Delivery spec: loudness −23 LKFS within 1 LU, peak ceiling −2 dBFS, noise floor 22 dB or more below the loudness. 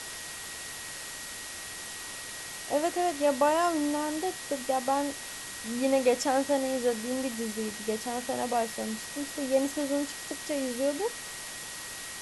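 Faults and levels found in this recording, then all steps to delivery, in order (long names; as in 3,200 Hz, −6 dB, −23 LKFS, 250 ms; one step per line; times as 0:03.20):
interfering tone 1,900 Hz; level of the tone −46 dBFS; background noise floor −41 dBFS; target noise floor −53 dBFS; integrated loudness −30.5 LKFS; sample peak −12.5 dBFS; target loudness −23.0 LKFS
→ notch filter 1,900 Hz, Q 30
noise reduction from a noise print 12 dB
level +7.5 dB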